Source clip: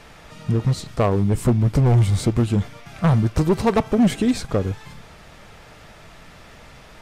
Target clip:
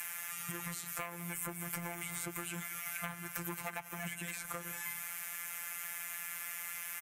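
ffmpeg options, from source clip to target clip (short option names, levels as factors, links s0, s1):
-filter_complex "[0:a]aderivative,bandreject=f=1900:w=19,bandreject=f=58.24:t=h:w=4,bandreject=f=116.48:t=h:w=4,bandreject=f=174.72:t=h:w=4,bandreject=f=232.96:t=h:w=4,bandreject=f=291.2:t=h:w=4,asplit=2[s0][s1];[s1]aecho=0:1:186:0.0944[s2];[s0][s2]amix=inputs=2:normalize=0,afftfilt=real='hypot(re,im)*cos(PI*b)':imag='0':win_size=1024:overlap=0.75,acrossover=split=160|1300[s3][s4][s5];[s5]alimiter=level_in=1.41:limit=0.0631:level=0:latency=1:release=303,volume=0.708[s6];[s3][s4][s6]amix=inputs=3:normalize=0,acrossover=split=3900[s7][s8];[s8]acompressor=threshold=0.00158:ratio=4:attack=1:release=60[s9];[s7][s9]amix=inputs=2:normalize=0,equalizer=f=125:t=o:w=1:g=8,equalizer=f=250:t=o:w=1:g=-4,equalizer=f=500:t=o:w=1:g=-6,equalizer=f=2000:t=o:w=1:g=10,equalizer=f=4000:t=o:w=1:g=-10,equalizer=f=8000:t=o:w=1:g=-6,acompressor=threshold=0.00224:ratio=5,aexciter=amount=8.1:drive=1.4:freq=6500,volume=5.01"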